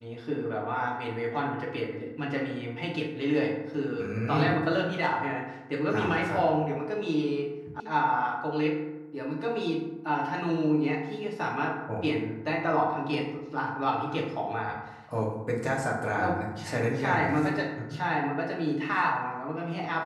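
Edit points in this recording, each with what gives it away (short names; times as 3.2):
7.8 sound cut off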